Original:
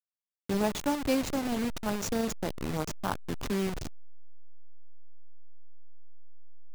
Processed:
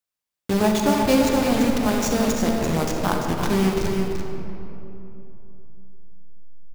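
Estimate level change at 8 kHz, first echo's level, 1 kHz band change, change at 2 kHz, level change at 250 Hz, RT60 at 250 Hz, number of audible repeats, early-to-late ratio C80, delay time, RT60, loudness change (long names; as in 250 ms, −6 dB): +9.5 dB, −7.0 dB, +11.0 dB, +10.0 dB, +11.0 dB, 3.6 s, 1, 1.5 dB, 340 ms, 3.0 s, +10.5 dB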